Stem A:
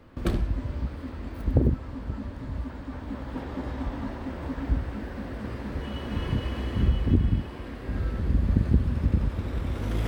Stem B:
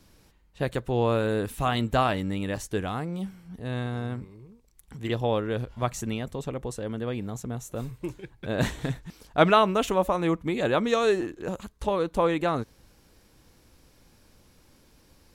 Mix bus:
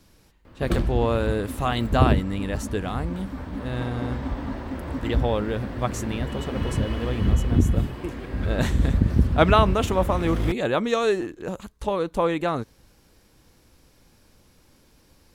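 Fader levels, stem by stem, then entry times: +2.5 dB, +1.0 dB; 0.45 s, 0.00 s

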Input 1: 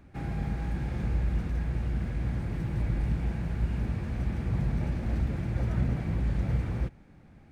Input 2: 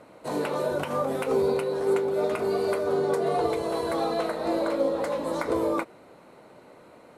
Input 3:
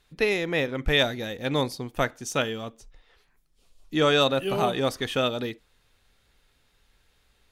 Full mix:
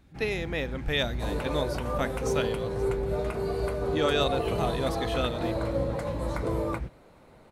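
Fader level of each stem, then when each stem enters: -5.5 dB, -5.0 dB, -6.0 dB; 0.00 s, 0.95 s, 0.00 s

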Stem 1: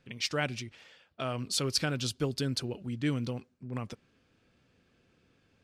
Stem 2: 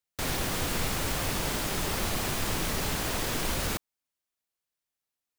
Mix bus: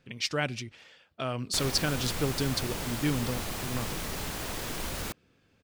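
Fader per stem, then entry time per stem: +1.5 dB, -5.0 dB; 0.00 s, 1.35 s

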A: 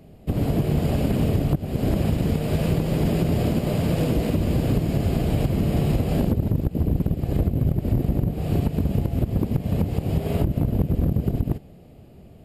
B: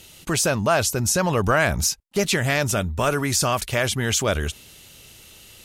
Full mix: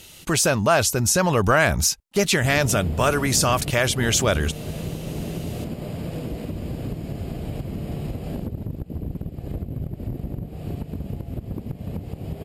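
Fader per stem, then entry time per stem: -8.5 dB, +1.5 dB; 2.15 s, 0.00 s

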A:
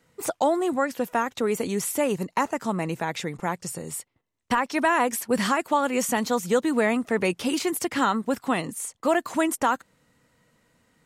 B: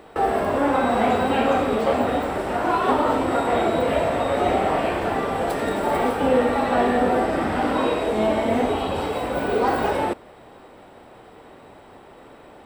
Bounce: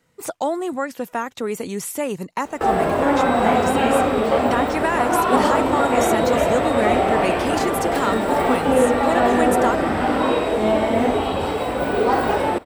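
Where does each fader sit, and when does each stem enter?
-0.5 dB, +2.5 dB; 0.00 s, 2.45 s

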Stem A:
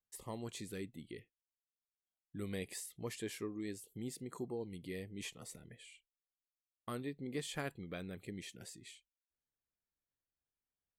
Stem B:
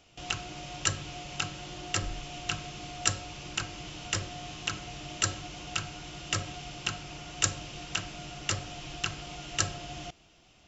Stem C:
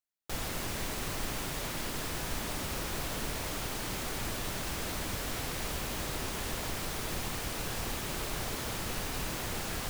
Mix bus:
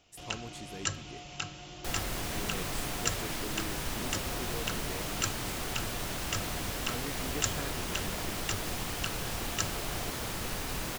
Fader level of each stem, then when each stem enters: -0.5 dB, -4.5 dB, 0.0 dB; 0.00 s, 0.00 s, 1.55 s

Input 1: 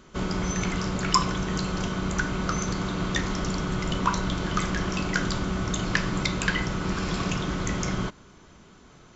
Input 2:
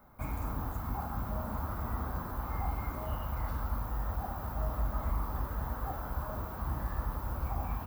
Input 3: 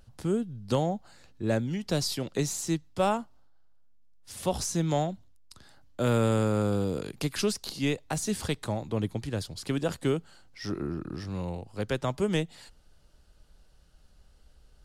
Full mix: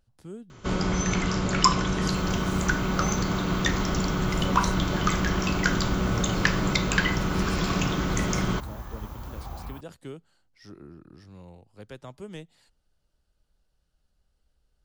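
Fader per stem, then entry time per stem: +2.0 dB, -3.5 dB, -13.0 dB; 0.50 s, 1.95 s, 0.00 s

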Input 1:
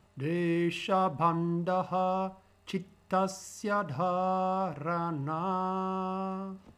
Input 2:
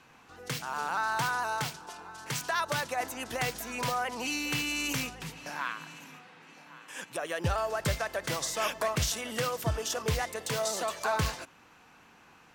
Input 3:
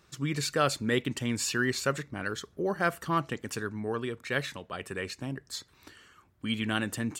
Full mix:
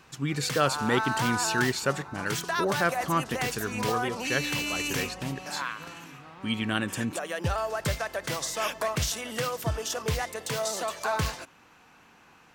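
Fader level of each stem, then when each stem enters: -16.5 dB, +1.0 dB, +1.5 dB; 0.95 s, 0.00 s, 0.00 s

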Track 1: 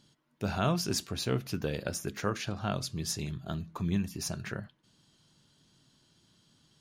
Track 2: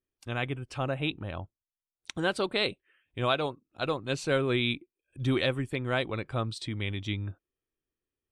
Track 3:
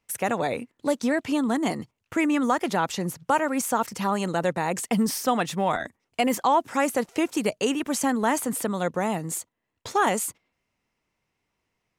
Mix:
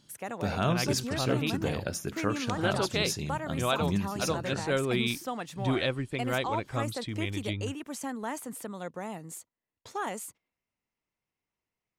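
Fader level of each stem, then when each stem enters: +1.0 dB, -1.5 dB, -12.0 dB; 0.00 s, 0.40 s, 0.00 s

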